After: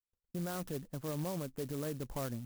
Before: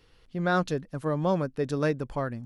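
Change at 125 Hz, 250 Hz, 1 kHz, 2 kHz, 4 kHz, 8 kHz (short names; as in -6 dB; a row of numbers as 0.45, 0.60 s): -9.0, -10.0, -15.5, -17.5, -7.5, +2.5 dB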